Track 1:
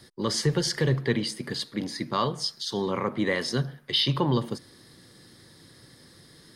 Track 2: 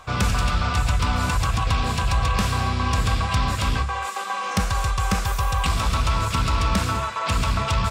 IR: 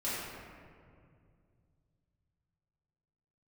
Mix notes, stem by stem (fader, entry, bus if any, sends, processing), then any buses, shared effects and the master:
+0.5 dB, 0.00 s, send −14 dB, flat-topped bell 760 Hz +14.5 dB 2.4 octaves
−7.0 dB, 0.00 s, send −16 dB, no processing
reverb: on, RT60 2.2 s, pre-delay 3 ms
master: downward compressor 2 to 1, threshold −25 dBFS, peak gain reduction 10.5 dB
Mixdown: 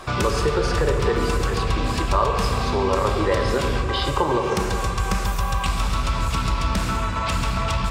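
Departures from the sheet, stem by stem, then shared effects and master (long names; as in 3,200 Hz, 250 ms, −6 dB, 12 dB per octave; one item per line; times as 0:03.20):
stem 2 −7.0 dB → +4.0 dB
reverb return +6.0 dB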